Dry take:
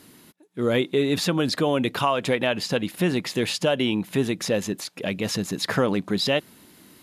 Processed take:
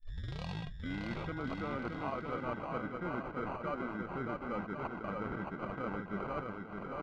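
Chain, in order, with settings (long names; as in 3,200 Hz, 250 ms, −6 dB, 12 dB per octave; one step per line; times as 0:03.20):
turntable start at the beginning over 1.37 s
reversed playback
downward compressor 5 to 1, threshold −33 dBFS, peak gain reduction 15 dB
reversed playback
decimation without filtering 25×
surface crackle 61 per second −60 dBFS
low-pass filter sweep 4,000 Hz → 1,500 Hz, 0:00.49–0:01.43
on a send: bouncing-ball delay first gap 620 ms, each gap 0.75×, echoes 5
on the sum: level −6.5 dB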